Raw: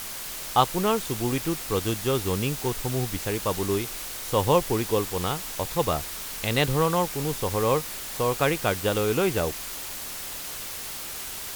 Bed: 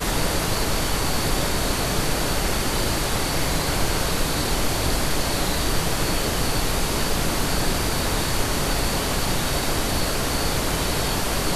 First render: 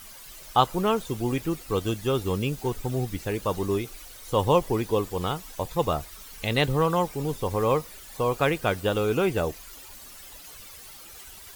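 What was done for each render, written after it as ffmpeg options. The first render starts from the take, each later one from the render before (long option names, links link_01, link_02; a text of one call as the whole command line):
ffmpeg -i in.wav -af "afftdn=noise_reduction=13:noise_floor=-36" out.wav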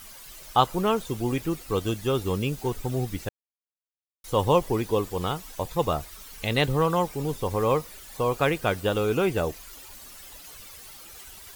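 ffmpeg -i in.wav -filter_complex "[0:a]asplit=3[link_01][link_02][link_03];[link_01]atrim=end=3.29,asetpts=PTS-STARTPTS,afade=type=out:start_time=3.286:duration=0.004:curve=hsin[link_04];[link_02]atrim=start=3.29:end=4.24,asetpts=PTS-STARTPTS,volume=0[link_05];[link_03]atrim=start=4.24,asetpts=PTS-STARTPTS,afade=type=in:duration=0.004:curve=hsin[link_06];[link_04][link_05][link_06]concat=n=3:v=0:a=1" out.wav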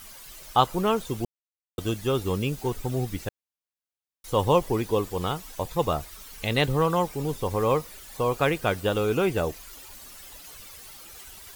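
ffmpeg -i in.wav -filter_complex "[0:a]asplit=3[link_01][link_02][link_03];[link_01]atrim=end=1.25,asetpts=PTS-STARTPTS,afade=type=out:start_time=1.246:duration=0.004:curve=hsin[link_04];[link_02]atrim=start=1.25:end=1.78,asetpts=PTS-STARTPTS,volume=0[link_05];[link_03]atrim=start=1.78,asetpts=PTS-STARTPTS,afade=type=in:duration=0.004:curve=hsin[link_06];[link_04][link_05][link_06]concat=n=3:v=0:a=1" out.wav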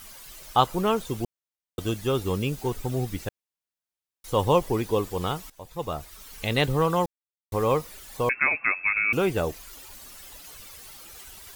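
ffmpeg -i in.wav -filter_complex "[0:a]asettb=1/sr,asplit=3[link_01][link_02][link_03];[link_01]atrim=end=8.294[link_04];[link_02]atrim=start=8.29:end=9.13,asetpts=PTS-STARTPTS,afade=type=in:duration=0.004:curve=qsin,afade=type=out:start_time=0.836:duration=0.004:curve=qsin,lowpass=frequency=2300:width_type=q:width=0.5098,lowpass=frequency=2300:width_type=q:width=0.6013,lowpass=frequency=2300:width_type=q:width=0.9,lowpass=frequency=2300:width_type=q:width=2.563,afreqshift=-2700[link_05];[link_03]atrim=start=9.126[link_06];[link_04][link_05]acrossfade=duration=0.004:curve1=hsin:curve2=qsin[link_07];[link_07][link_06]acrossfade=duration=0.004:curve1=qsin:curve2=hsin,asplit=4[link_08][link_09][link_10][link_11];[link_08]atrim=end=5.5,asetpts=PTS-STARTPTS,afade=type=out:start_time=5.496:duration=0.004:curve=hsin:silence=0.11885[link_12];[link_09]atrim=start=5.5:end=7.06,asetpts=PTS-STARTPTS,afade=type=in:duration=0.87:silence=0.11885,afade=type=out:start_time=1.556:duration=0.004:curve=hsin[link_13];[link_10]atrim=start=7.06:end=7.52,asetpts=PTS-STARTPTS,volume=0[link_14];[link_11]atrim=start=7.52,asetpts=PTS-STARTPTS,afade=type=in:duration=0.004:curve=hsin[link_15];[link_12][link_13][link_14][link_15]concat=n=4:v=0:a=1" out.wav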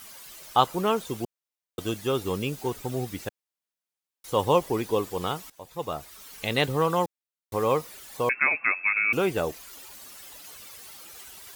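ffmpeg -i in.wav -af "highpass=frequency=180:poles=1" out.wav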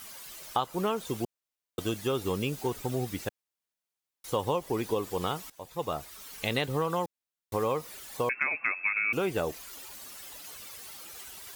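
ffmpeg -i in.wav -af "acompressor=threshold=-25dB:ratio=6" out.wav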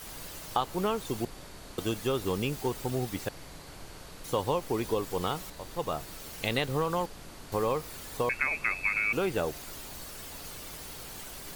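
ffmpeg -i in.wav -i bed.wav -filter_complex "[1:a]volume=-24dB[link_01];[0:a][link_01]amix=inputs=2:normalize=0" out.wav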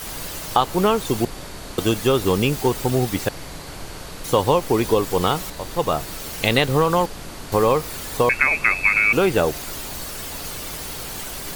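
ffmpeg -i in.wav -af "volume=11.5dB,alimiter=limit=-2dB:level=0:latency=1" out.wav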